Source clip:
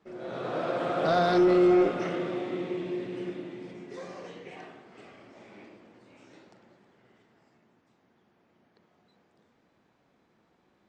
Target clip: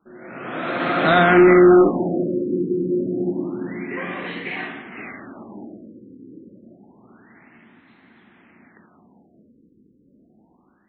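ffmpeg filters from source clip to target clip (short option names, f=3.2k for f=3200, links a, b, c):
-af "equalizer=f=125:t=o:w=1:g=-4,equalizer=f=250:t=o:w=1:g=7,equalizer=f=500:t=o:w=1:g=-8,equalizer=f=2k:t=o:w=1:g=10,dynaudnorm=f=300:g=5:m=13dB,afftfilt=real='re*lt(b*sr/1024,510*pow(4400/510,0.5+0.5*sin(2*PI*0.28*pts/sr)))':imag='im*lt(b*sr/1024,510*pow(4400/510,0.5+0.5*sin(2*PI*0.28*pts/sr)))':win_size=1024:overlap=0.75"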